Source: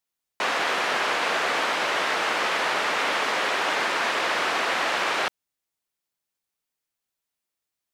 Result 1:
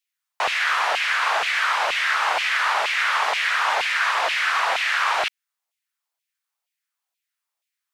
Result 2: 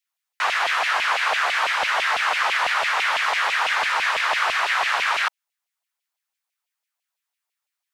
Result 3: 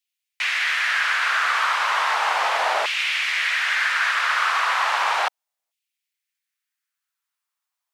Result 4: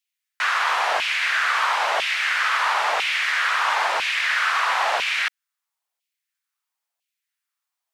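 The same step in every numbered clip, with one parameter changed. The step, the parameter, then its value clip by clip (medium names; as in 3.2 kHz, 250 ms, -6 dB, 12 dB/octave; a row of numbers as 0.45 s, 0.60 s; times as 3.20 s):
LFO high-pass, rate: 2.1 Hz, 6 Hz, 0.35 Hz, 1 Hz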